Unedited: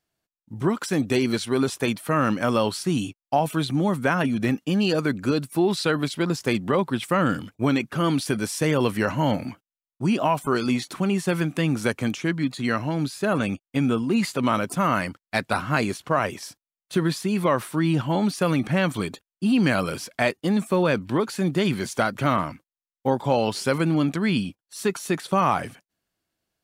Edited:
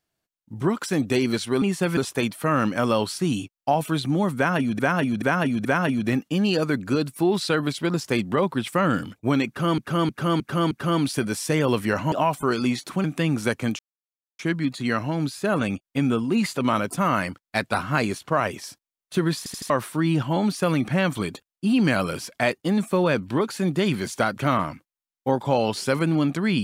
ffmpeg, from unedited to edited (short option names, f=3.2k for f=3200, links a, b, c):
-filter_complex "[0:a]asplit=17[a][b][c][d][e][f][g][h][i][j][k][l][m][n][o][p][q];[a]atrim=end=1.622[r];[b]atrim=start=11.078:end=11.432[s];[c]atrim=start=1.618:end=4.442[t];[d]atrim=start=4.008:end=4.442[u];[e]atrim=start=4.008:end=4.442[v];[f]atrim=start=4.008:end=8.142[w];[g]atrim=start=7.828:end=8.142[x];[h]atrim=start=7.828:end=8.142[y];[i]atrim=start=7.828:end=8.142[z];[j]atrim=start=7.828:end=9.242[aa];[k]atrim=start=10.158:end=11.082[ab];[l]atrim=start=11.428:end=12.18,asetpts=PTS-STARTPTS,afade=t=out:st=0.748:d=0.004:c=hsin,apad=pad_dur=0.6[ac];[m]atrim=start=12.18:end=17.252,asetpts=PTS-STARTPTS,afade=t=in:d=0.004:c=hsin[ad];[n]atrim=start=17.168:end=17.252[ae];[o]atrim=start=17.168:end=17.252[af];[p]atrim=start=17.168:end=17.252[ag];[q]atrim=start=17.488[ah];[r][s]acrossfade=d=0.004:c1=hsin:c2=hsin[ai];[ai][t]acrossfade=d=0.004:c1=hsin:c2=hsin[aj];[aj][u]acrossfade=d=0.004:c1=hsin:c2=hsin[ak];[ak][v]acrossfade=d=0.004:c1=hsin:c2=hsin[al];[al][w]acrossfade=d=0.004:c1=hsin:c2=hsin[am];[am][x]acrossfade=d=0.004:c1=hsin:c2=hsin[an];[an][y]acrossfade=d=0.004:c1=hsin:c2=hsin[ao];[ao][z]acrossfade=d=0.004:c1=hsin:c2=hsin[ap];[ap][aa]acrossfade=d=0.004:c1=hsin:c2=hsin[aq];[aq][ab]acrossfade=d=0.004:c1=hsin:c2=hsin[ar];[ac][ad]concat=n=2:v=0:a=1[as];[ar][as]acrossfade=d=0.004:c1=hsin:c2=hsin[at];[at][ae]acrossfade=d=0.004:c1=hsin:c2=hsin[au];[au][af]acrossfade=d=0.004:c1=hsin:c2=hsin[av];[av][ag]acrossfade=d=0.004:c1=hsin:c2=hsin[aw];[aw][ah]acrossfade=d=0.004:c1=hsin:c2=hsin"